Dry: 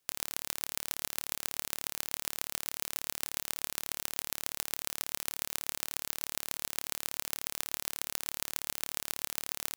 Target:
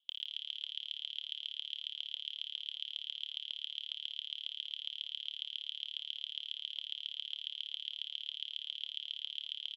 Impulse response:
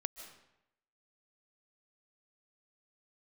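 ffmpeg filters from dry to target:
-af "asuperpass=centerf=3200:order=4:qfactor=7.3,aecho=1:1:61|122|183|244|305|366|427:0.251|0.151|0.0904|0.0543|0.0326|0.0195|0.0117,volume=3.76"

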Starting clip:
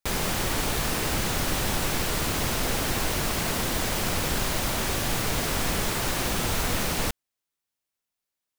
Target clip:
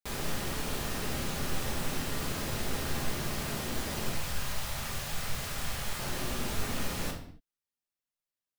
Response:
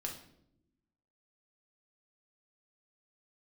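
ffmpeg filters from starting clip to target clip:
-filter_complex "[0:a]asettb=1/sr,asplit=3[s0][s1][s2];[s0]atrim=end=4.124[s3];[s1]atrim=start=4.12:end=5.99,asetpts=PTS-STARTPTS,afade=t=in:d=0.004:c=qsin,afade=t=out:st=1.866:d=0.004:c=qsin,equalizer=f=310:t=o:w=1.3:g=-12.5[s4];[s2]atrim=start=5.986[s5];[s3][s4]acrossfade=d=0.004:c1=hsin:c2=qsin[s6];[s6][s5]acrossfade=d=0.004:c1=qsin:c2=hsin[s7];[1:a]atrim=start_sample=2205,afade=t=out:st=0.34:d=0.01,atrim=end_sample=15435[s8];[s7][s8]afir=irnorm=-1:irlink=0,volume=0.398"

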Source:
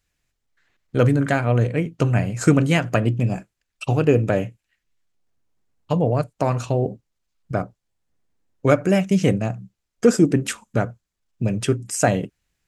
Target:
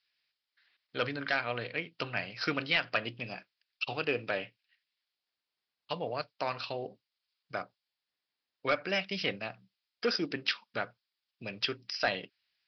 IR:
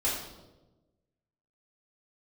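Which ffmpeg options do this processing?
-af "aderivative,aresample=11025,volume=25.1,asoftclip=hard,volume=0.0398,aresample=44100,volume=2.66"

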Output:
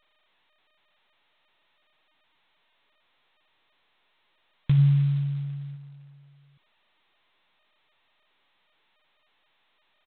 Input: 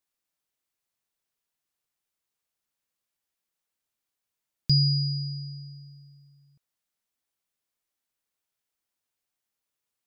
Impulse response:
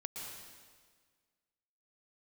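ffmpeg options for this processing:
-filter_complex "[0:a]asplit=3[s0][s1][s2];[s0]afade=t=out:st=4.77:d=0.02[s3];[s1]asplit=2[s4][s5];[s5]adelay=29,volume=0.501[s6];[s4][s6]amix=inputs=2:normalize=0,afade=t=in:st=4.77:d=0.02,afade=t=out:st=5.75:d=0.02[s7];[s2]afade=t=in:st=5.75:d=0.02[s8];[s3][s7][s8]amix=inputs=3:normalize=0,adynamicequalizer=threshold=0.002:dfrequency=640:dqfactor=2.7:tfrequency=640:tqfactor=2.7:attack=5:release=100:ratio=0.375:range=2:mode=cutabove:tftype=bell,volume=1.26" -ar 8000 -c:a adpcm_g726 -b:a 16k

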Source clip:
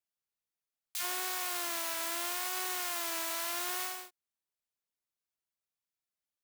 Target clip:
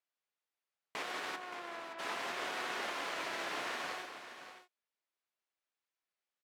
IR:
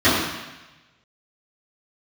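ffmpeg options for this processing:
-filter_complex "[0:a]aemphasis=mode=production:type=75fm,alimiter=limit=0.168:level=0:latency=1:release=371,asplit=3[s0][s1][s2];[s0]afade=t=out:st=1.35:d=0.02[s3];[s1]adynamicsmooth=sensitivity=4:basefreq=1300,afade=t=in:st=1.35:d=0.02,afade=t=out:st=1.98:d=0.02[s4];[s2]afade=t=in:st=1.98:d=0.02[s5];[s3][s4][s5]amix=inputs=3:normalize=0,aeval=exprs='clip(val(0),-1,0.02)':c=same,highpass=340,lowpass=2300,aecho=1:1:190|573:0.266|0.299,volume=1.5"

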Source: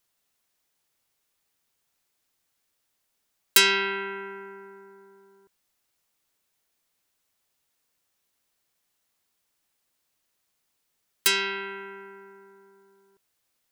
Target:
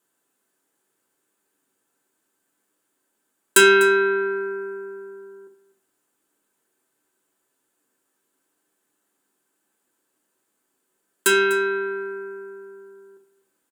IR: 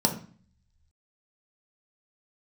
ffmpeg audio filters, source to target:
-filter_complex "[0:a]aecho=1:1:248:0.158[s0];[1:a]atrim=start_sample=2205,asetrate=74970,aresample=44100[s1];[s0][s1]afir=irnorm=-1:irlink=0,volume=0.631"

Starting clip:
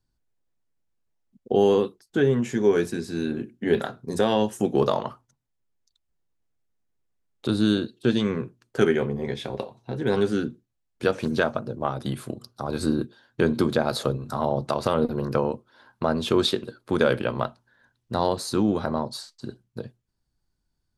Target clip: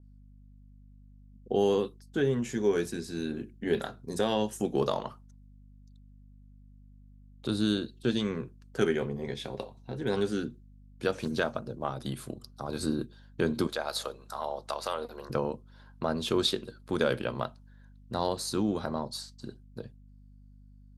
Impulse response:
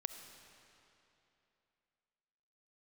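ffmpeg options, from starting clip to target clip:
-filter_complex "[0:a]asettb=1/sr,asplit=3[s0][s1][s2];[s0]atrim=end=13.674[s3];[s1]atrim=start=13.67:end=15.3,asetpts=PTS-STARTPTS,afade=t=in:d=0.004:c=qsin,afade=t=out:st=1.626:d=0.004:c=qsin,highpass=620[s4];[s2]atrim=start=15.296[s5];[s3][s4]acrossfade=d=0.004:c1=hsin:c2=qsin[s6];[s6][s5]acrossfade=d=0.004:c1=qsin:c2=hsin,aeval=exprs='val(0)+0.00501*(sin(2*PI*50*n/s)+sin(2*PI*2*50*n/s)/2+sin(2*PI*3*50*n/s)/3+sin(2*PI*4*50*n/s)/4+sin(2*PI*5*50*n/s)/5)':c=same,adynamicequalizer=threshold=0.00562:dfrequency=3100:dqfactor=0.7:tfrequency=3100:tqfactor=0.7:attack=5:release=100:ratio=0.375:range=2.5:mode=boostabove:tftype=highshelf,volume=0.473"

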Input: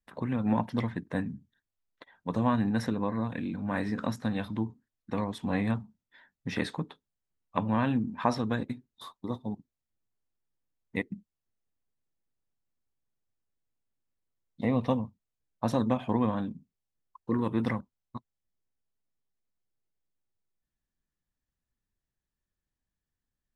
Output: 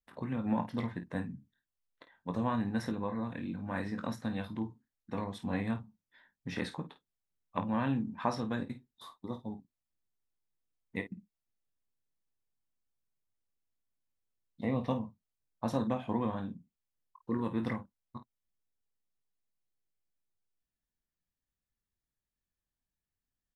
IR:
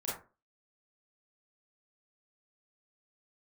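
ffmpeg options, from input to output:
-af "aecho=1:1:22|51:0.355|0.251,volume=0.531"

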